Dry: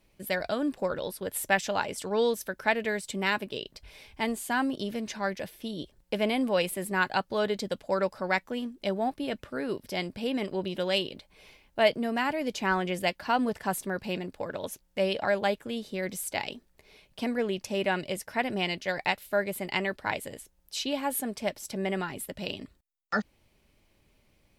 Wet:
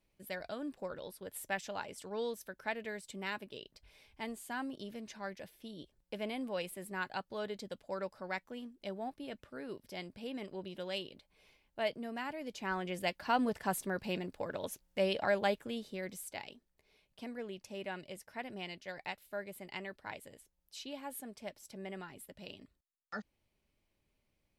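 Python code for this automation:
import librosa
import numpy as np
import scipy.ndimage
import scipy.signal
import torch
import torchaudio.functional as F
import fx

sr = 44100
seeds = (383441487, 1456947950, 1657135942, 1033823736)

y = fx.gain(x, sr, db=fx.line((12.49, -12.0), (13.35, -4.5), (15.6, -4.5), (16.54, -14.0)))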